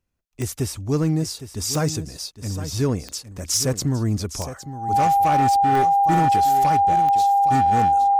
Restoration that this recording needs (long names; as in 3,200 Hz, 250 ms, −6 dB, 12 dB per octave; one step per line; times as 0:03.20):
clipped peaks rebuilt −13.5 dBFS
click removal
notch filter 800 Hz, Q 30
echo removal 811 ms −12.5 dB